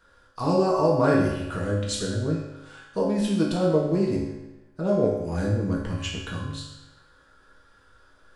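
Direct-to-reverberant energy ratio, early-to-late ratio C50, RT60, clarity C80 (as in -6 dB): -4.5 dB, 2.0 dB, 1.0 s, 4.5 dB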